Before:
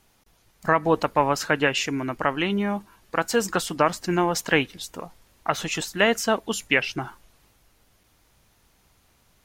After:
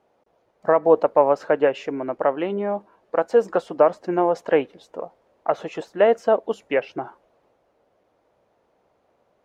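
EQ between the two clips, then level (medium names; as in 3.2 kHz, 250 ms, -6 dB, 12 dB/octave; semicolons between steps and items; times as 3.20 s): band-pass filter 550 Hz, Q 2.3; +9.0 dB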